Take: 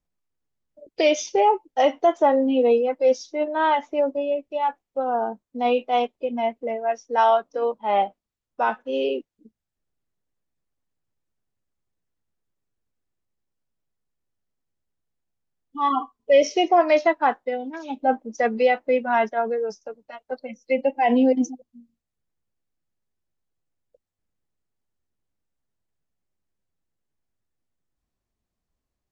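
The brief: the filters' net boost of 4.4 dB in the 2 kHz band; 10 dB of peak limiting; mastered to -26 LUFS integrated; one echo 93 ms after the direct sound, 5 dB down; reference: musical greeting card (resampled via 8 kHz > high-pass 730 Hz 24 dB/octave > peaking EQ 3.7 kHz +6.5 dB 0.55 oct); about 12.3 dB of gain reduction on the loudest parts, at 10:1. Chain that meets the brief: peaking EQ 2 kHz +4.5 dB; compression 10:1, threshold -25 dBFS; peak limiter -23.5 dBFS; delay 93 ms -5 dB; resampled via 8 kHz; high-pass 730 Hz 24 dB/octave; peaking EQ 3.7 kHz +6.5 dB 0.55 oct; trim +10.5 dB

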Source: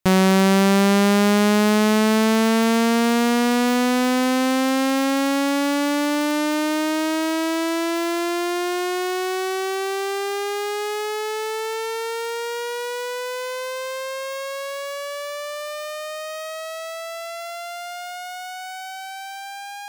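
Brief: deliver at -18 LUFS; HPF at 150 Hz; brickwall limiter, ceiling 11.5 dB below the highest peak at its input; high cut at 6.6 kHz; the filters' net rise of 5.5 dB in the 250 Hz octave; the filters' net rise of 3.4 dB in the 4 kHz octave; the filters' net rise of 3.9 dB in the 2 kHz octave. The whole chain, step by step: high-pass 150 Hz; low-pass 6.6 kHz; peaking EQ 250 Hz +7.5 dB; peaking EQ 2 kHz +4 dB; peaking EQ 4 kHz +3.5 dB; trim +5.5 dB; peak limiter -7 dBFS

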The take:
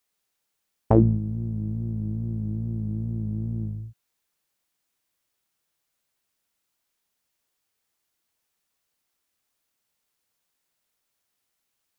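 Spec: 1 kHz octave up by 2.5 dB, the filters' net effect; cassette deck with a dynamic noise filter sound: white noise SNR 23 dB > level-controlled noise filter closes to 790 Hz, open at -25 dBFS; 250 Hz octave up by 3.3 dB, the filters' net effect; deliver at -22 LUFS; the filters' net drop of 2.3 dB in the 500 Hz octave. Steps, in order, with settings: peaking EQ 250 Hz +6 dB; peaking EQ 500 Hz -8.5 dB; peaking EQ 1 kHz +6.5 dB; white noise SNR 23 dB; level-controlled noise filter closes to 790 Hz, open at -25 dBFS; trim +3 dB

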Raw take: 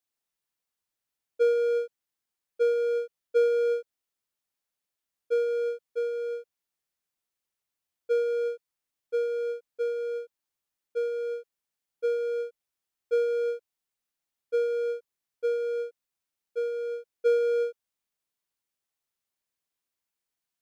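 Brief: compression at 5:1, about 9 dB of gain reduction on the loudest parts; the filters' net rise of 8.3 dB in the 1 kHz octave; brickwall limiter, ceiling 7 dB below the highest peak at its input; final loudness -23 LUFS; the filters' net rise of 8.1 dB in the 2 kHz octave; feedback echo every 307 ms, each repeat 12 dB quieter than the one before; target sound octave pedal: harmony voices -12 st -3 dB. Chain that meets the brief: peaking EQ 1 kHz +9 dB; peaking EQ 2 kHz +7.5 dB; compression 5:1, threshold -27 dBFS; peak limiter -26.5 dBFS; feedback delay 307 ms, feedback 25%, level -12 dB; harmony voices -12 st -3 dB; trim +9.5 dB

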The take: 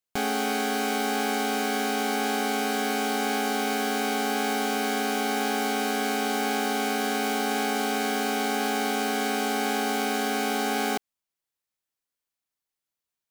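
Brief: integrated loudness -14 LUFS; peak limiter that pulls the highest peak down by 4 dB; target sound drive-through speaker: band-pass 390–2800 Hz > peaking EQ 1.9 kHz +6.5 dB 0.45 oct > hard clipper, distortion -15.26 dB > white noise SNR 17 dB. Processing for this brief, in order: peak limiter -19 dBFS; band-pass 390–2800 Hz; peaking EQ 1.9 kHz +6.5 dB 0.45 oct; hard clipper -24.5 dBFS; white noise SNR 17 dB; trim +16 dB

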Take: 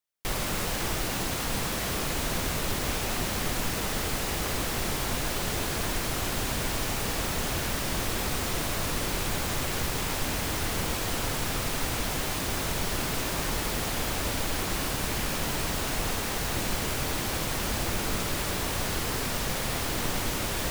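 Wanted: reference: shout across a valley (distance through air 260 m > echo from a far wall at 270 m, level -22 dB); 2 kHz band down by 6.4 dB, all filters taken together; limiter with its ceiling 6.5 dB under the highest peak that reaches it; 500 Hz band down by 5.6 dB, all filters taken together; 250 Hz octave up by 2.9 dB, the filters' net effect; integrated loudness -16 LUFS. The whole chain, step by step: peaking EQ 250 Hz +6.5 dB; peaking EQ 500 Hz -8.5 dB; peaking EQ 2 kHz -4.5 dB; peak limiter -22 dBFS; distance through air 260 m; echo from a far wall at 270 m, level -22 dB; trim +19.5 dB

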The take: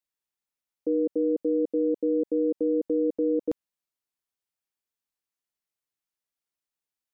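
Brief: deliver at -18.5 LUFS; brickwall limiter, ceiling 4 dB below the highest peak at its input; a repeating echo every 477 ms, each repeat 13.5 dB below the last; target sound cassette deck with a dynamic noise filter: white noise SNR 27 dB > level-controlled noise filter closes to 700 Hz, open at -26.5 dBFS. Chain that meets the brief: peak limiter -22 dBFS; feedback delay 477 ms, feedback 21%, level -13.5 dB; white noise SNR 27 dB; level-controlled noise filter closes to 700 Hz, open at -26.5 dBFS; trim +13 dB

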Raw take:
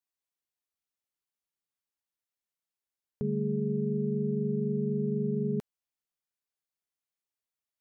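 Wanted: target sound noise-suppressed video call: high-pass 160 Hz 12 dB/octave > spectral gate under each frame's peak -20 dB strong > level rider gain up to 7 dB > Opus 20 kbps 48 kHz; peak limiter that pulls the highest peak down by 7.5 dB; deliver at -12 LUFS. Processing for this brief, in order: peak limiter -28.5 dBFS; high-pass 160 Hz 12 dB/octave; spectral gate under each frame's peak -20 dB strong; level rider gain up to 7 dB; trim +26 dB; Opus 20 kbps 48 kHz

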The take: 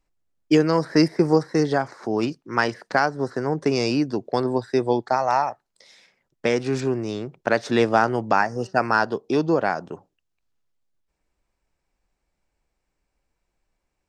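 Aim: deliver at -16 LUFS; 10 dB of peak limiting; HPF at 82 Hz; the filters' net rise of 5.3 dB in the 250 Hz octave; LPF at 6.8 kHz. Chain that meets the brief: high-pass 82 Hz; low-pass 6.8 kHz; peaking EQ 250 Hz +7 dB; trim +8 dB; peak limiter -5 dBFS

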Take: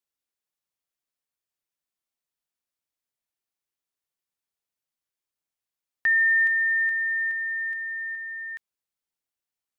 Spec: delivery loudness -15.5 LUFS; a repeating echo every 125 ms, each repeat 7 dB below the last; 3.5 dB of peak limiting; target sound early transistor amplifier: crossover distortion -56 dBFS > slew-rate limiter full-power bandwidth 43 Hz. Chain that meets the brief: peak limiter -20.5 dBFS; feedback delay 125 ms, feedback 45%, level -7 dB; crossover distortion -56 dBFS; slew-rate limiter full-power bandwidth 43 Hz; trim +17 dB

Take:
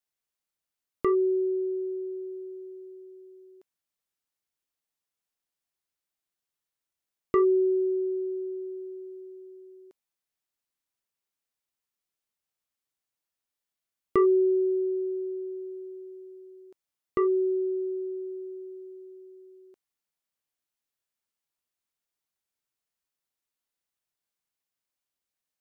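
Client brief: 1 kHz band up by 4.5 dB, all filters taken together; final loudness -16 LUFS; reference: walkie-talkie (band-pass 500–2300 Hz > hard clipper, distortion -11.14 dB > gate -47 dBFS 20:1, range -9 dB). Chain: band-pass 500–2300 Hz; peaking EQ 1 kHz +6 dB; hard clipper -26 dBFS; gate -47 dBFS 20:1, range -9 dB; trim +18 dB

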